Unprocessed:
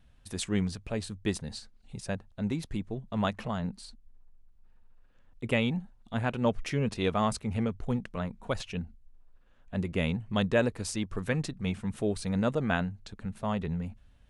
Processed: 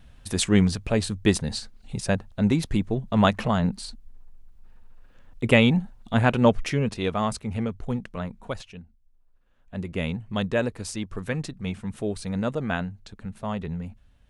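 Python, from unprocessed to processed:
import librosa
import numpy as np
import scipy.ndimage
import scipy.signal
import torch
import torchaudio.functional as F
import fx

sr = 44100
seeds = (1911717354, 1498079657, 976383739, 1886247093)

y = fx.gain(x, sr, db=fx.line((6.38, 10.0), (7.01, 2.0), (8.43, 2.0), (8.83, -9.0), (9.99, 1.0)))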